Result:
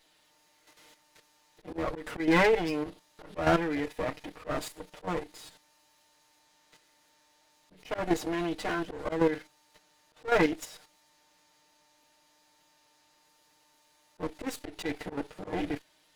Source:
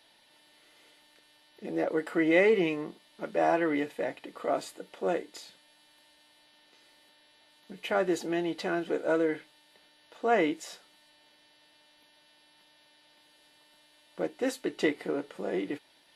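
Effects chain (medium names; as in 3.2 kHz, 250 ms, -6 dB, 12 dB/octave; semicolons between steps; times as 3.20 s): comb filter that takes the minimum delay 6.5 ms; slow attack 124 ms; level held to a coarse grid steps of 9 dB; trim +5.5 dB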